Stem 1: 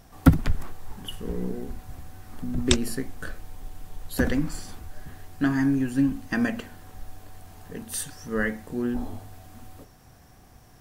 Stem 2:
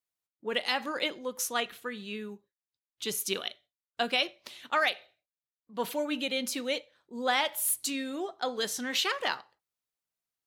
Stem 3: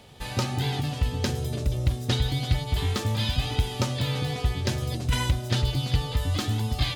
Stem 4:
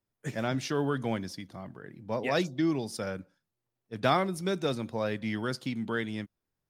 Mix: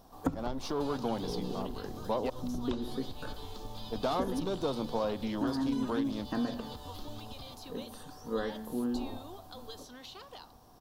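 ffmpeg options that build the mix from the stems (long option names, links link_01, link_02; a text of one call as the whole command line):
ffmpeg -i stem1.wav -i stem2.wav -i stem3.wav -i stem4.wav -filter_complex "[0:a]bandreject=frequency=72.68:width_type=h:width=4,bandreject=frequency=145.36:width_type=h:width=4,bandreject=frequency=218.04:width_type=h:width=4,bandreject=frequency=290.72:width_type=h:width=4,bandreject=frequency=363.4:width_type=h:width=4,bandreject=frequency=436.08:width_type=h:width=4,bandreject=frequency=508.76:width_type=h:width=4,bandreject=frequency=581.44:width_type=h:width=4,bandreject=frequency=654.12:width_type=h:width=4,bandreject=frequency=726.8:width_type=h:width=4,bandreject=frequency=799.48:width_type=h:width=4,bandreject=frequency=872.16:width_type=h:width=4,bandreject=frequency=944.84:width_type=h:width=4,bandreject=frequency=1017.52:width_type=h:width=4,bandreject=frequency=1090.2:width_type=h:width=4,bandreject=frequency=1162.88:width_type=h:width=4,bandreject=frequency=1235.56:width_type=h:width=4,bandreject=frequency=1308.24:width_type=h:width=4,bandreject=frequency=1380.92:width_type=h:width=4,bandreject=frequency=1453.6:width_type=h:width=4,bandreject=frequency=1526.28:width_type=h:width=4,bandreject=frequency=1598.96:width_type=h:width=4,bandreject=frequency=1671.64:width_type=h:width=4,bandreject=frequency=1744.32:width_type=h:width=4,bandreject=frequency=1817:width_type=h:width=4,bandreject=frequency=1889.68:width_type=h:width=4,bandreject=frequency=1962.36:width_type=h:width=4,bandreject=frequency=2035.04:width_type=h:width=4,bandreject=frequency=2107.72:width_type=h:width=4,acrossover=split=2600[link_01][link_02];[link_02]acompressor=threshold=-47dB:ratio=4:attack=1:release=60[link_03];[link_01][link_03]amix=inputs=2:normalize=0,volume=-8dB[link_04];[1:a]tiltshelf=frequency=970:gain=-7,adelay=1100,volume=-15dB[link_05];[2:a]equalizer=frequency=6100:width_type=o:width=0.77:gain=4,acompressor=threshold=-27dB:ratio=6,adelay=600,volume=-9.5dB[link_06];[3:a]aeval=exprs='(tanh(22.4*val(0)+0.4)-tanh(0.4))/22.4':channel_layout=same,volume=0dB,asplit=3[link_07][link_08][link_09];[link_07]atrim=end=2.3,asetpts=PTS-STARTPTS,afade=type=out:start_time=2.296:duration=0.004:curve=hsin[link_10];[link_08]atrim=start=2.3:end=3.79,asetpts=PTS-STARTPTS,volume=0[link_11];[link_09]atrim=start=3.79,asetpts=PTS-STARTPTS,afade=type=in:duration=0.004:curve=hsin[link_12];[link_10][link_11][link_12]concat=n=3:v=0:a=1[link_13];[link_04][link_13]amix=inputs=2:normalize=0,highshelf=frequency=9700:gain=5,acompressor=threshold=-34dB:ratio=5,volume=0dB[link_14];[link_05][link_06]amix=inputs=2:normalize=0,acrossover=split=480|1800|4900[link_15][link_16][link_17][link_18];[link_15]acompressor=threshold=-45dB:ratio=4[link_19];[link_16]acompressor=threshold=-58dB:ratio=4[link_20];[link_17]acompressor=threshold=-53dB:ratio=4[link_21];[link_18]acompressor=threshold=-57dB:ratio=4[link_22];[link_19][link_20][link_21][link_22]amix=inputs=4:normalize=0,alimiter=level_in=13.5dB:limit=-24dB:level=0:latency=1:release=166,volume=-13.5dB,volume=0dB[link_23];[link_14][link_23]amix=inputs=2:normalize=0,equalizer=frequency=125:width_type=o:width=1:gain=-3,equalizer=frequency=250:width_type=o:width=1:gain=5,equalizer=frequency=500:width_type=o:width=1:gain=5,equalizer=frequency=1000:width_type=o:width=1:gain=11,equalizer=frequency=2000:width_type=o:width=1:gain=-11,equalizer=frequency=4000:width_type=o:width=1:gain=7,equalizer=frequency=8000:width_type=o:width=1:gain=-4" out.wav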